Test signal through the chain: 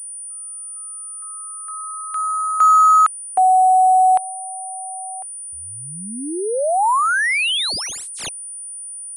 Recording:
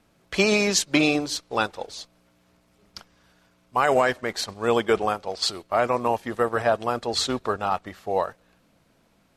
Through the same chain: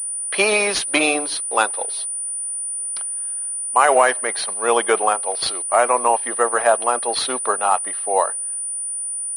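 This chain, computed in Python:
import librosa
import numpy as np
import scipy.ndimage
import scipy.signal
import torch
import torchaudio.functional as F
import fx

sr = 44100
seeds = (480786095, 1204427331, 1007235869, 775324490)

y = fx.dynamic_eq(x, sr, hz=920.0, q=1.7, threshold_db=-31.0, ratio=4.0, max_db=3)
y = scipy.signal.sosfilt(scipy.signal.butter(2, 470.0, 'highpass', fs=sr, output='sos'), y)
y = fx.pwm(y, sr, carrier_hz=9400.0)
y = F.gain(torch.from_numpy(y), 5.5).numpy()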